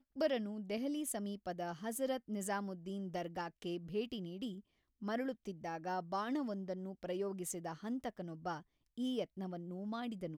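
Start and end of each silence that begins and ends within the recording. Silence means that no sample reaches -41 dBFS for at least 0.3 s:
4.53–5.02
8.57–8.98

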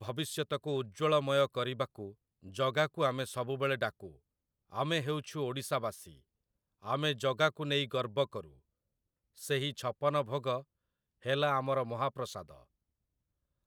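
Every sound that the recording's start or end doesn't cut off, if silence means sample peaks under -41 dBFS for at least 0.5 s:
4.73–6.03
6.85–8.41
9.42–10.6
11.26–12.42

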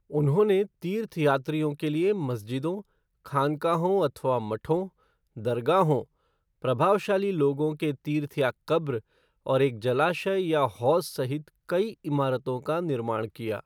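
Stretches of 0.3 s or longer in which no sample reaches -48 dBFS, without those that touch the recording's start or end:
2.82–3.26
4.89–5.36
6.04–6.62
9–9.46

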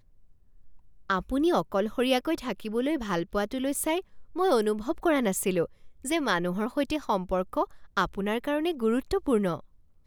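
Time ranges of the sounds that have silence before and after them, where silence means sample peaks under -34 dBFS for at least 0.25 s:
1.1–4
4.36–5.66
6.05–7.65
7.97–9.59

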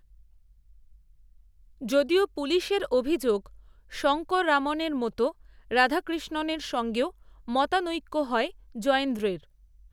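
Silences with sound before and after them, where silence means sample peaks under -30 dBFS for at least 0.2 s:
3.37–3.94
5.3–5.71
7.08–7.49
8.47–8.77

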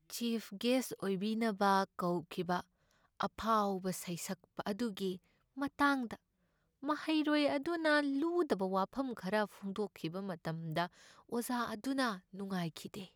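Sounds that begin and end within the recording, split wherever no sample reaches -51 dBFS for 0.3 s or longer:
3.2–5.17
5.57–6.15

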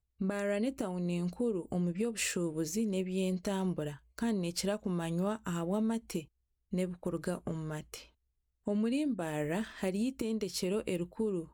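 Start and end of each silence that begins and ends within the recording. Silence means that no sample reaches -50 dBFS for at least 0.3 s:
6.25–6.72
8.06–8.67

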